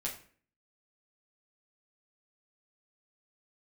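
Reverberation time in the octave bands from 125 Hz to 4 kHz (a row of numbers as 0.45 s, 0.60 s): 0.55 s, 0.60 s, 0.50 s, 0.45 s, 0.45 s, 0.35 s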